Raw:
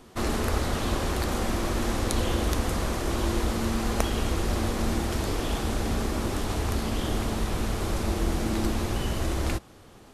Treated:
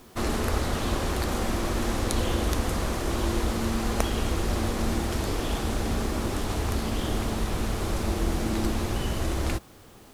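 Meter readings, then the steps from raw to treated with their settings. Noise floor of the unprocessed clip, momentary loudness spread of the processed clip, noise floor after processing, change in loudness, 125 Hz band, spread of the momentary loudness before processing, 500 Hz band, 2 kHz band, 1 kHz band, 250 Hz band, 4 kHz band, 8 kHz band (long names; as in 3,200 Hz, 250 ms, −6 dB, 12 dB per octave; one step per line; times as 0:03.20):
−51 dBFS, 2 LU, −50 dBFS, 0.0 dB, 0.0 dB, 2 LU, 0.0 dB, 0.0 dB, 0.0 dB, 0.0 dB, 0.0 dB, 0.0 dB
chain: bit-depth reduction 10 bits, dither triangular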